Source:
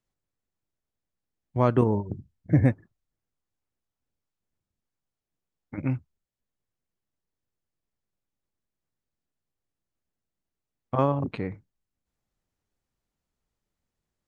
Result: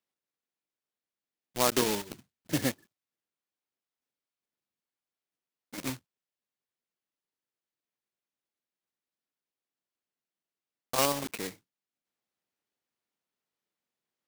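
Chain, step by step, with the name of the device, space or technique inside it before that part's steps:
early digital voice recorder (band-pass filter 250–3,500 Hz; one scale factor per block 3 bits)
high-shelf EQ 2,700 Hz +11 dB
level −5 dB

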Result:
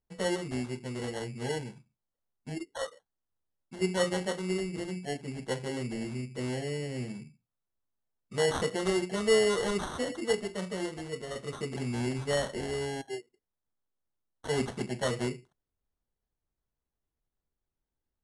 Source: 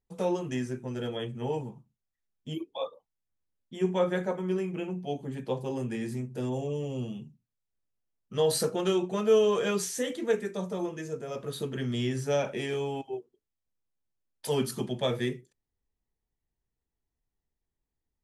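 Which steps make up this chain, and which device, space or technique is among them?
crushed at another speed (tape speed factor 2×; decimation without filtering 9×; tape speed factor 0.5×)
level −2 dB

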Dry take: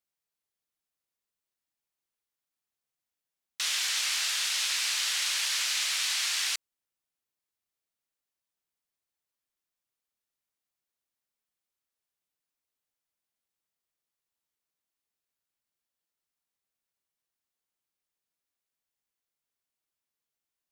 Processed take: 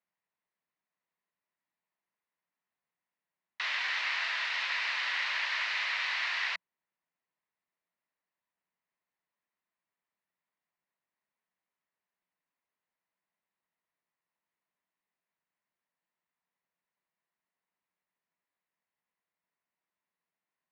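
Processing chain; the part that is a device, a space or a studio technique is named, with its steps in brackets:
guitar cabinet (loudspeaker in its box 100–3,500 Hz, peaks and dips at 110 Hz −7 dB, 180 Hz +8 dB, 650 Hz +4 dB, 990 Hz +8 dB, 1,900 Hz +7 dB, 3,300 Hz −6 dB)

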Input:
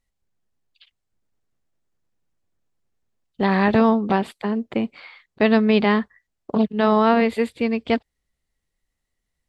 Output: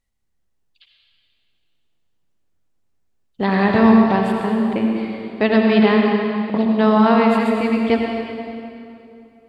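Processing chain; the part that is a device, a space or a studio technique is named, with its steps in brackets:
stairwell (convolution reverb RT60 2.7 s, pre-delay 69 ms, DRR 0 dB)

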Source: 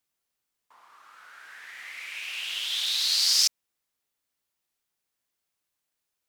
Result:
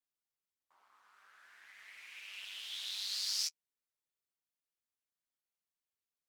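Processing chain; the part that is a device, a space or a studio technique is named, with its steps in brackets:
alien voice (ring modulation 100 Hz; flanger 0.48 Hz, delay 7.2 ms, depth 8.7 ms, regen −17%)
level −7.5 dB

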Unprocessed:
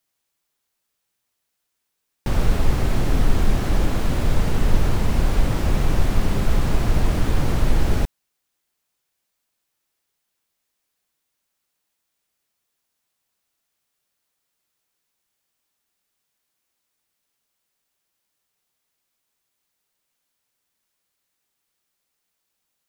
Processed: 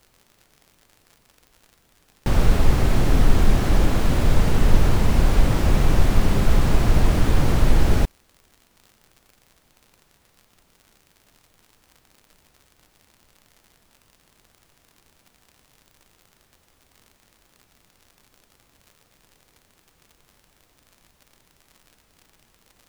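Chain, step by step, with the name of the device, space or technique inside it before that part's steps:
vinyl LP (surface crackle; pink noise bed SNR 42 dB)
level +2 dB

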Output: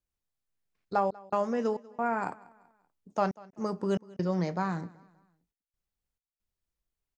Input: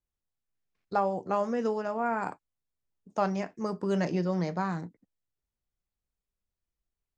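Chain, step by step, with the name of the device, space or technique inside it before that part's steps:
trance gate with a delay (gate pattern "xxxxx.xx.x" 68 BPM −60 dB; repeating echo 192 ms, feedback 41%, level −22.5 dB)

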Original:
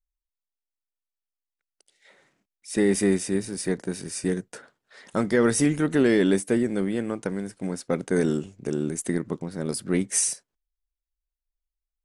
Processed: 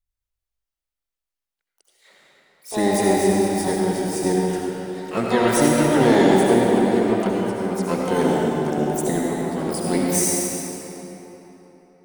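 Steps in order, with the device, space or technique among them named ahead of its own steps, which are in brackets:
shimmer-style reverb (pitch-shifted copies added +12 semitones −6 dB; convolution reverb RT60 3.7 s, pre-delay 61 ms, DRR −3.5 dB)

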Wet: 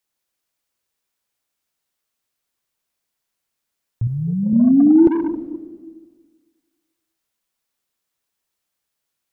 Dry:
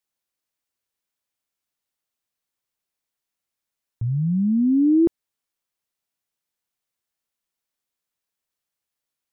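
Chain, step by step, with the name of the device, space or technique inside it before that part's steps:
saturated reverb return (on a send at −4.5 dB: convolution reverb RT60 1.7 s, pre-delay 81 ms + soft clipping −17 dBFS, distortion −11 dB)
0:04.07–0:04.53: on the sum: bass and treble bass −7 dB, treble +6 dB
level +5 dB

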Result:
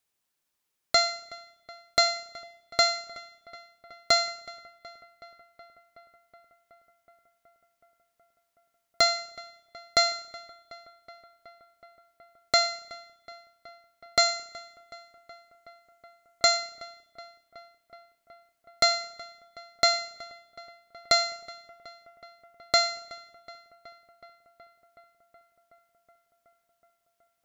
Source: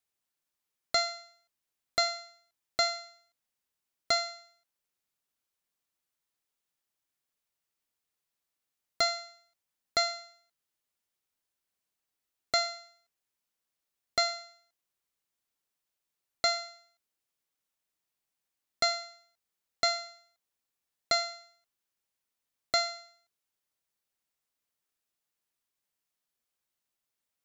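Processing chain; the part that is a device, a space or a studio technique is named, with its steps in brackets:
dub delay into a spring reverb (feedback echo with a low-pass in the loop 372 ms, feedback 81%, low-pass 3,700 Hz, level −19.5 dB; spring reverb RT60 1.3 s, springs 31 ms, chirp 50 ms, DRR 18 dB)
0:14.19–0:16.57: parametric band 7,000 Hz +5.5 dB 0.31 octaves
level +5.5 dB

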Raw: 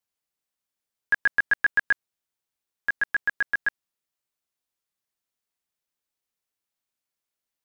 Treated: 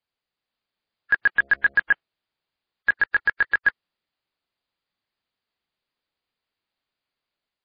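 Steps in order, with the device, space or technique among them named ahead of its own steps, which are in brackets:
0:01.31–0:01.76: hum removal 68.72 Hz, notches 10
0:02.99–0:03.65: comb filter 2.2 ms, depth 41%
low-bitrate web radio (automatic gain control gain up to 3 dB; brickwall limiter −14.5 dBFS, peak gain reduction 4 dB; level +4 dB; MP3 24 kbit/s 11,025 Hz)

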